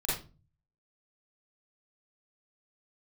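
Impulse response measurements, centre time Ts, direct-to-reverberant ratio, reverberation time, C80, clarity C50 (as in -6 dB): 51 ms, -8.5 dB, 0.35 s, 8.5 dB, 1.0 dB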